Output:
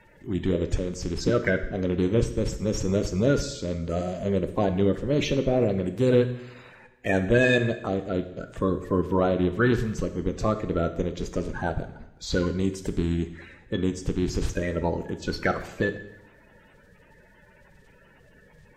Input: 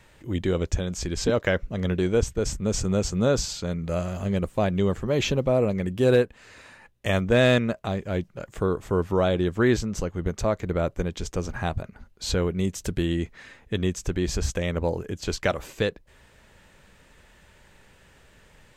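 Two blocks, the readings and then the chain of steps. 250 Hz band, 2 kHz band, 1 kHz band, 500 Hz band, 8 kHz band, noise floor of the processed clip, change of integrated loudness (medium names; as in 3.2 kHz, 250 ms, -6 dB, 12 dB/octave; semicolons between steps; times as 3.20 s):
+1.0 dB, +1.0 dB, 0.0 dB, -1.0 dB, -6.0 dB, -56 dBFS, -0.5 dB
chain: coarse spectral quantiser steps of 30 dB; treble shelf 5.4 kHz -9 dB; two-slope reverb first 0.83 s, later 3 s, from -28 dB, DRR 7.5 dB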